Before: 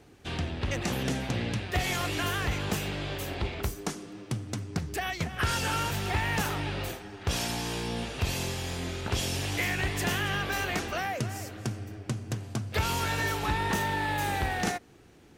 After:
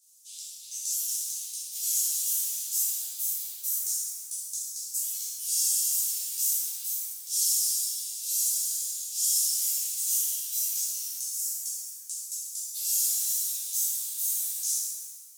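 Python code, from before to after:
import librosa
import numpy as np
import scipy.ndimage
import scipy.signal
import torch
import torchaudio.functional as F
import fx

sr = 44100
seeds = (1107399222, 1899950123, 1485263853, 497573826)

y = scipy.signal.sosfilt(scipy.signal.cheby2(4, 70, 1600.0, 'highpass', fs=sr, output='sos'), x)
y = fx.over_compress(y, sr, threshold_db=-40.0, ratio=-1.0)
y = fx.rev_shimmer(y, sr, seeds[0], rt60_s=1.2, semitones=7, shimmer_db=-8, drr_db=-10.5)
y = F.gain(torch.from_numpy(y), 6.0).numpy()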